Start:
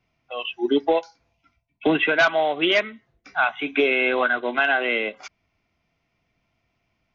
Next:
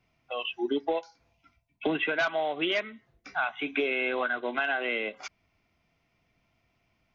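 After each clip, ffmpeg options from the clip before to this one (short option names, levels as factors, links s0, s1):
-af "acompressor=threshold=0.0251:ratio=2"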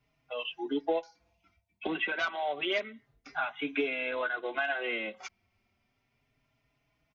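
-filter_complex "[0:a]asplit=2[s0][s1];[s1]adelay=4.5,afreqshift=0.3[s2];[s0][s2]amix=inputs=2:normalize=1"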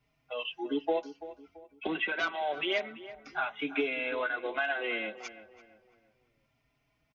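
-filter_complex "[0:a]asplit=2[s0][s1];[s1]adelay=336,lowpass=f=1900:p=1,volume=0.2,asplit=2[s2][s3];[s3]adelay=336,lowpass=f=1900:p=1,volume=0.4,asplit=2[s4][s5];[s5]adelay=336,lowpass=f=1900:p=1,volume=0.4,asplit=2[s6][s7];[s7]adelay=336,lowpass=f=1900:p=1,volume=0.4[s8];[s0][s2][s4][s6][s8]amix=inputs=5:normalize=0"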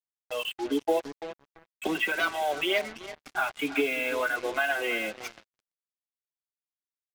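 -af "acrusher=bits=6:mix=0:aa=0.5,volume=1.58"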